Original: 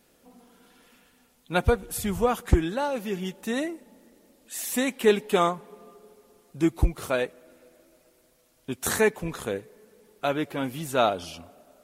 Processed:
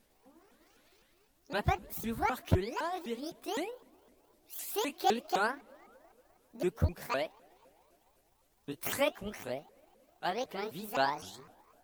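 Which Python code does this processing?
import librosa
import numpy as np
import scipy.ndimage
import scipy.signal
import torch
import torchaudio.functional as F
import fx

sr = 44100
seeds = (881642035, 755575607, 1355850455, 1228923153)

y = fx.pitch_ramps(x, sr, semitones=11.0, every_ms=255)
y = fx.dmg_noise_colour(y, sr, seeds[0], colour='brown', level_db=-69.0)
y = F.gain(torch.from_numpy(y), -7.0).numpy()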